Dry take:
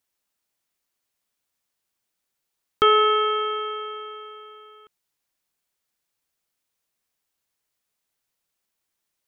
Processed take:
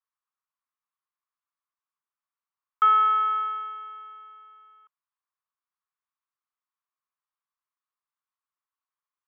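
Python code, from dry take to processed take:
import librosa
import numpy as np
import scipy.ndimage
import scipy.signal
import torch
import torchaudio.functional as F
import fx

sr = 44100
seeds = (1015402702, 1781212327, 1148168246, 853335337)

y = fx.ladder_bandpass(x, sr, hz=1200.0, resonance_pct=70)
y = fx.dynamic_eq(y, sr, hz=1200.0, q=0.73, threshold_db=-35.0, ratio=4.0, max_db=5)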